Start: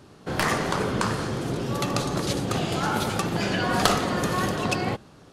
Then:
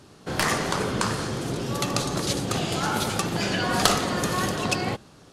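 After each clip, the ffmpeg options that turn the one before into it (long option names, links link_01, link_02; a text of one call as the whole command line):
ffmpeg -i in.wav -af "equalizer=frequency=7800:width=0.41:gain=5.5,volume=-1dB" out.wav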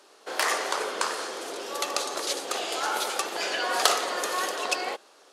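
ffmpeg -i in.wav -af "highpass=frequency=420:width=0.5412,highpass=frequency=420:width=1.3066,volume=-1dB" out.wav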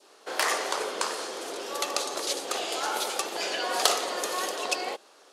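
ffmpeg -i in.wav -af "adynamicequalizer=threshold=0.01:dfrequency=1500:dqfactor=1.2:tfrequency=1500:tqfactor=1.2:attack=5:release=100:ratio=0.375:range=2.5:mode=cutabove:tftype=bell" out.wav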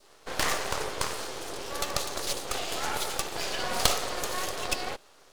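ffmpeg -i in.wav -af "aeval=exprs='max(val(0),0)':channel_layout=same,volume=2.5dB" out.wav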